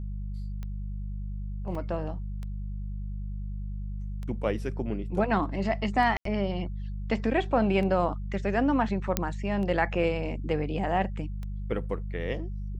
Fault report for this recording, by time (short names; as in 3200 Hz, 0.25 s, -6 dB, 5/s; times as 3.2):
hum 50 Hz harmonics 4 -34 dBFS
tick 33 1/3 rpm -26 dBFS
1.75 gap 3.2 ms
6.17–6.25 gap 83 ms
9.17 pop -8 dBFS